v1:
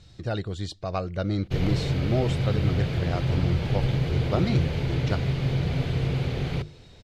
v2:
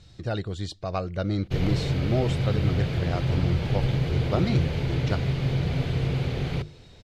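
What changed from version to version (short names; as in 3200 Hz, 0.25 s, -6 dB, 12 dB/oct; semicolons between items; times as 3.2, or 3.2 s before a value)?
none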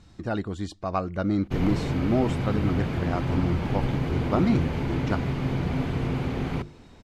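master: add graphic EQ 125/250/500/1000/4000 Hz -6/+9/-4/+7/-7 dB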